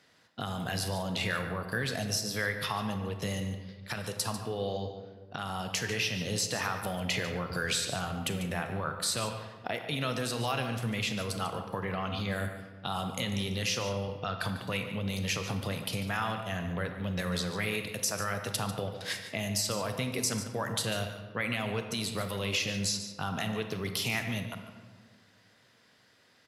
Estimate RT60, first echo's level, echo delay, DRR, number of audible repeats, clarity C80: 1.6 s, -12.0 dB, 145 ms, 5.5 dB, 1, 7.5 dB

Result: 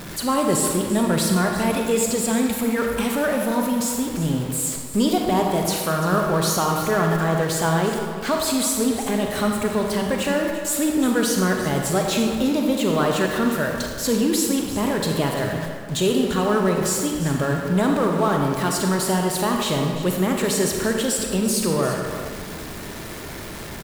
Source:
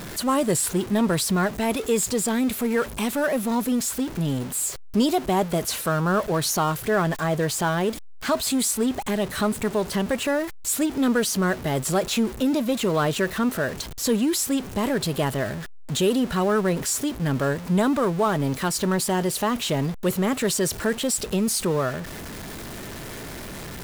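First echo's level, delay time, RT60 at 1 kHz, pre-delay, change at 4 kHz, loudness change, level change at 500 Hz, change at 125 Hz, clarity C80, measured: -13.0 dB, 344 ms, 1.6 s, 34 ms, +2.0 dB, +2.5 dB, +2.5 dB, +2.5 dB, 3.5 dB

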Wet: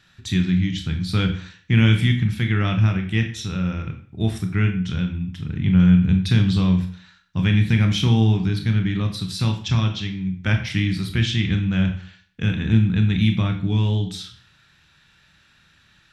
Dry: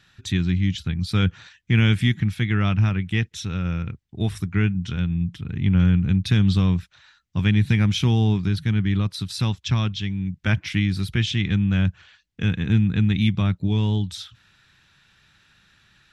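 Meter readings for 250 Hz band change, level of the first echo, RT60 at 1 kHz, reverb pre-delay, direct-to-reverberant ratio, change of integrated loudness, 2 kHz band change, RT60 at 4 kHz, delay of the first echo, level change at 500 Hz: +2.0 dB, no echo, 0.50 s, 27 ms, 4.5 dB, +1.5 dB, +1.0 dB, 0.45 s, no echo, +1.5 dB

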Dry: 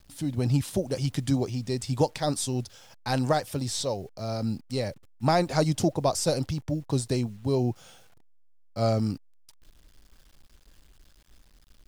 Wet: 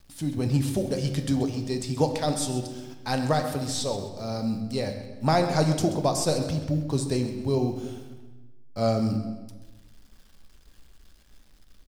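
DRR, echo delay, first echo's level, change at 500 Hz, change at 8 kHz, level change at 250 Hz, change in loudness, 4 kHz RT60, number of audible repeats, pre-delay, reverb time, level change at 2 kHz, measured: 5.0 dB, 131 ms, -13.0 dB, +1.0 dB, +0.5 dB, +2.0 dB, +1.0 dB, 0.95 s, 2, 3 ms, 1.2 s, +1.5 dB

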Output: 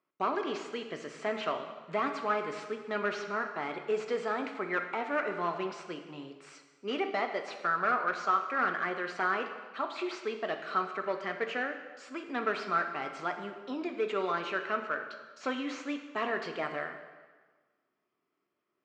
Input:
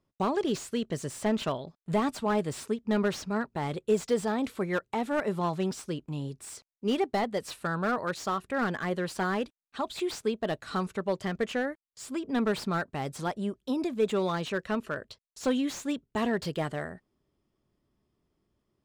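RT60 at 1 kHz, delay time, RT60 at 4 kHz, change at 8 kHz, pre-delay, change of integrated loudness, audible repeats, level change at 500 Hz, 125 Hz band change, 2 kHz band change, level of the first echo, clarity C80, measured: 1.4 s, no echo, 1.2 s, under -10 dB, 3 ms, -2.5 dB, no echo, -4.0 dB, -15.5 dB, +2.5 dB, no echo, 9.0 dB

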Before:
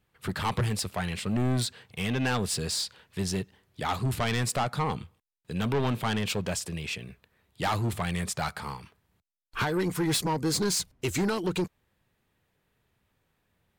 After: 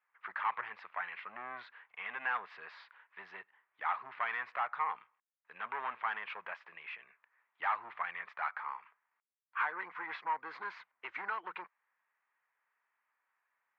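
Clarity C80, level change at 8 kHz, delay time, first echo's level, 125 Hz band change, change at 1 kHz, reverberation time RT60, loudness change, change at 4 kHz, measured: no reverb, under -40 dB, no echo, no echo, under -40 dB, -3.5 dB, no reverb, -9.5 dB, -22.0 dB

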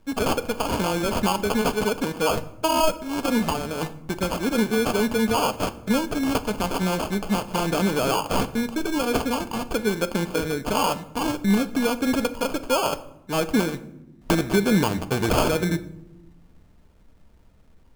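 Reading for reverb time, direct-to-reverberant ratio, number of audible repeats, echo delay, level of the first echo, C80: 0.90 s, 10.5 dB, no echo, no echo, no echo, 19.0 dB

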